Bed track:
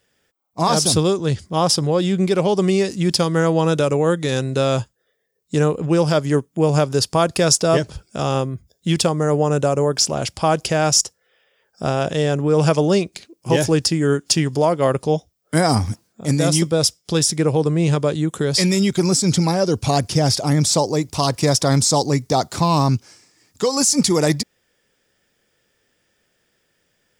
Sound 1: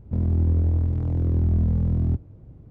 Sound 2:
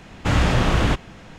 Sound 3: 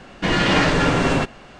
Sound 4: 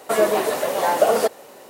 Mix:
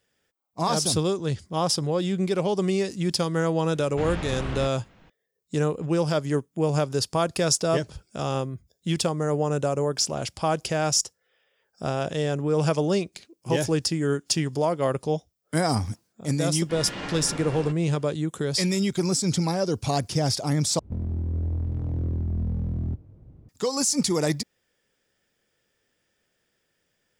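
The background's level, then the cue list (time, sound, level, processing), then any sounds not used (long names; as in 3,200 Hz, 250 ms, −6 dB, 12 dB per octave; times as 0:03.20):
bed track −7 dB
0:03.72: mix in 2 −13 dB + low-pass filter 4,900 Hz
0:16.47: mix in 3 −17.5 dB
0:20.79: overwrite with 1 −4 dB + brickwall limiter −17 dBFS
not used: 4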